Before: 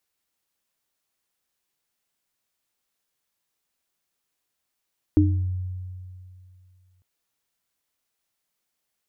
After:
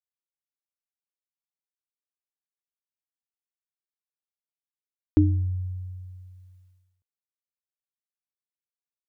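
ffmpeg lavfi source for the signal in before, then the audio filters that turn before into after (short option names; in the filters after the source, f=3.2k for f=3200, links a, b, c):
-f lavfi -i "aevalsrc='0.158*pow(10,-3*t/2.49)*sin(2*PI*91.8*t)+0.266*pow(10,-3*t/0.39)*sin(2*PI*304*t)':d=1.85:s=44100"
-af "agate=range=-33dB:threshold=-53dB:ratio=3:detection=peak"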